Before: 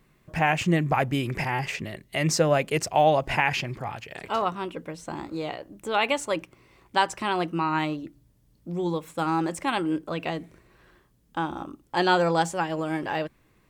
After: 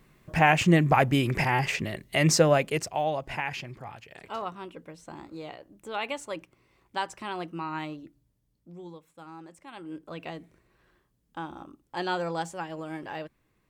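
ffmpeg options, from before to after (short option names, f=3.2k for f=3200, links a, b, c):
-af "volume=14dB,afade=t=out:st=2.31:d=0.69:silence=0.281838,afade=t=out:st=8.05:d=1.02:silence=0.266073,afade=t=in:st=9.7:d=0.47:silence=0.266073"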